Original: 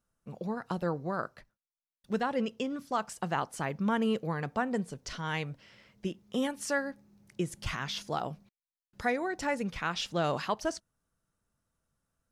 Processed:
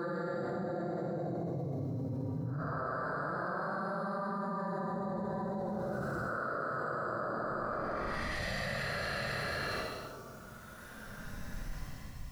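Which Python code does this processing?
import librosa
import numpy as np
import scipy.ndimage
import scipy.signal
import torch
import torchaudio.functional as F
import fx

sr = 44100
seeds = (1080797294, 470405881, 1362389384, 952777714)

p1 = fx.local_reverse(x, sr, ms=121.0)
p2 = fx.chorus_voices(p1, sr, voices=4, hz=0.83, base_ms=15, depth_ms=1.1, mix_pct=25)
p3 = fx.paulstretch(p2, sr, seeds[0], factor=19.0, window_s=0.05, from_s=0.94)
p4 = p3 + fx.echo_single(p3, sr, ms=495, db=-8.0, dry=0)
p5 = fx.env_flatten(p4, sr, amount_pct=100)
y = F.gain(torch.from_numpy(p5), -6.0).numpy()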